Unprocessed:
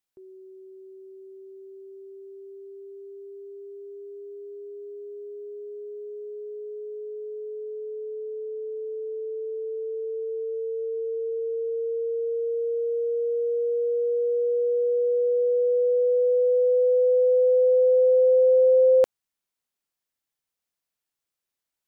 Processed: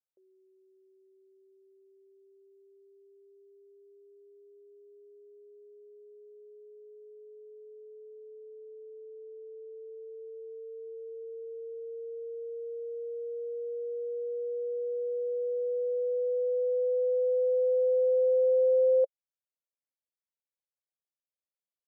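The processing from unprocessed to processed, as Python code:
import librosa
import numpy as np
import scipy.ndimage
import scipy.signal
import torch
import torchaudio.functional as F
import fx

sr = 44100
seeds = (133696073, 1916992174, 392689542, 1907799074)

y = fx.bandpass_q(x, sr, hz=540.0, q=6.5)
y = y * librosa.db_to_amplitude(-5.0)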